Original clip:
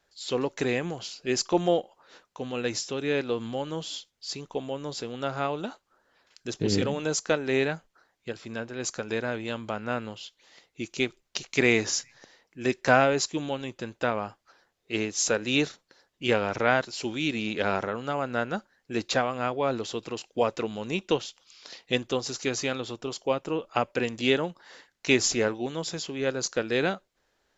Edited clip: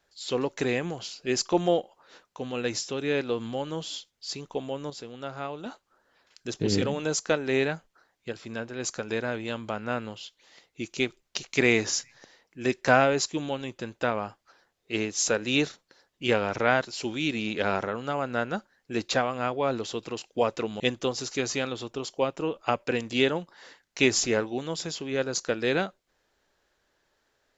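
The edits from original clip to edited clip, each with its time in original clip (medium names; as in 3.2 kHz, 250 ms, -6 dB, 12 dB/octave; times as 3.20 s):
4.90–5.66 s: gain -6 dB
20.80–21.88 s: delete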